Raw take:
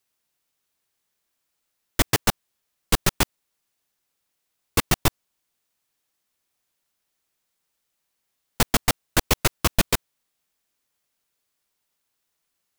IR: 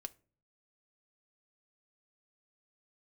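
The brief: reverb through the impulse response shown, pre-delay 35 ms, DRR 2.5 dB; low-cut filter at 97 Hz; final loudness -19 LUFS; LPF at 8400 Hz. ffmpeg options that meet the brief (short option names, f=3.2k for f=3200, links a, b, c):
-filter_complex "[0:a]highpass=97,lowpass=8.4k,asplit=2[a][b];[1:a]atrim=start_sample=2205,adelay=35[c];[b][c]afir=irnorm=-1:irlink=0,volume=1.5dB[d];[a][d]amix=inputs=2:normalize=0,volume=5dB"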